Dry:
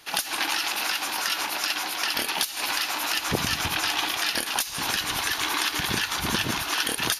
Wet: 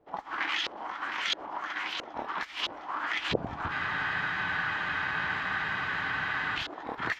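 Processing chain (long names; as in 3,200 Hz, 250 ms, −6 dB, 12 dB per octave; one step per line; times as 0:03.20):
formants moved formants +3 semitones
auto-filter low-pass saw up 1.5 Hz 500–3,600 Hz
frozen spectrum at 0:03.73, 2.84 s
level −6 dB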